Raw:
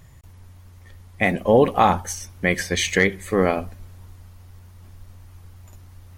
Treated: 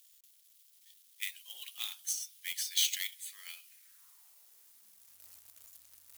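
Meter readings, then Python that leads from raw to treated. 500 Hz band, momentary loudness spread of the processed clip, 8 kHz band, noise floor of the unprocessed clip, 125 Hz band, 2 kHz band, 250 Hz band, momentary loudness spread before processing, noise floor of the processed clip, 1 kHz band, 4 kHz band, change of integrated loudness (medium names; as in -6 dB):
under -40 dB, 25 LU, -4.0 dB, -47 dBFS, under -40 dB, -21.0 dB, under -40 dB, 10 LU, -64 dBFS, under -40 dB, -4.5 dB, -15.0 dB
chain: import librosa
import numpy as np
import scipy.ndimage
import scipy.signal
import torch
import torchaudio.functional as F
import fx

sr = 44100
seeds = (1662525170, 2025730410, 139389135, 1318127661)

y = fx.filter_sweep_highpass(x, sr, from_hz=3300.0, to_hz=65.0, start_s=3.58, end_s=5.41, q=2.9)
y = fx.quant_companded(y, sr, bits=4)
y = np.diff(y, prepend=0.0)
y = F.gain(torch.from_numpy(y), -6.0).numpy()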